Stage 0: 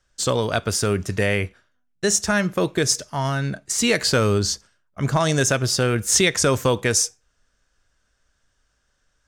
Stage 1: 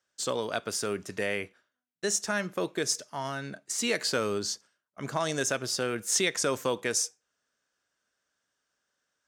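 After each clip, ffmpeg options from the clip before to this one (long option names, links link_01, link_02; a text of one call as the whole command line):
ffmpeg -i in.wav -af "highpass=230,volume=-8.5dB" out.wav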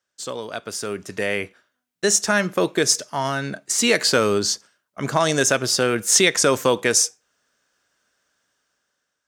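ffmpeg -i in.wav -af "dynaudnorm=framelen=500:gausssize=5:maxgain=12dB" out.wav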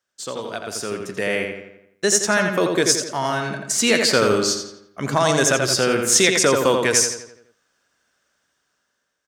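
ffmpeg -i in.wav -filter_complex "[0:a]asplit=2[link_01][link_02];[link_02]adelay=85,lowpass=frequency=3800:poles=1,volume=-4dB,asplit=2[link_03][link_04];[link_04]adelay=85,lowpass=frequency=3800:poles=1,volume=0.51,asplit=2[link_05][link_06];[link_06]adelay=85,lowpass=frequency=3800:poles=1,volume=0.51,asplit=2[link_07][link_08];[link_08]adelay=85,lowpass=frequency=3800:poles=1,volume=0.51,asplit=2[link_09][link_10];[link_10]adelay=85,lowpass=frequency=3800:poles=1,volume=0.51,asplit=2[link_11][link_12];[link_12]adelay=85,lowpass=frequency=3800:poles=1,volume=0.51,asplit=2[link_13][link_14];[link_14]adelay=85,lowpass=frequency=3800:poles=1,volume=0.51[link_15];[link_01][link_03][link_05][link_07][link_09][link_11][link_13][link_15]amix=inputs=8:normalize=0" out.wav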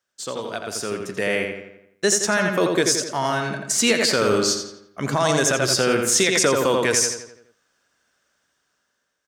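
ffmpeg -i in.wav -af "alimiter=limit=-8dB:level=0:latency=1:release=57" out.wav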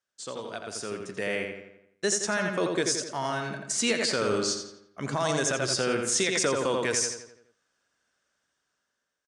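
ffmpeg -i in.wav -af "aresample=22050,aresample=44100,volume=-7.5dB" out.wav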